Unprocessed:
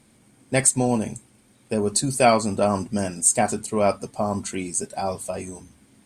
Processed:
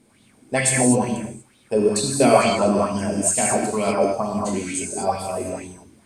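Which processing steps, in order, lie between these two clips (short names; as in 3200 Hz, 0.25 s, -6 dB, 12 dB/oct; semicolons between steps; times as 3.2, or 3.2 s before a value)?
non-linear reverb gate 0.27 s flat, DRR -2.5 dB; LFO bell 2.2 Hz 300–3700 Hz +12 dB; gain -4.5 dB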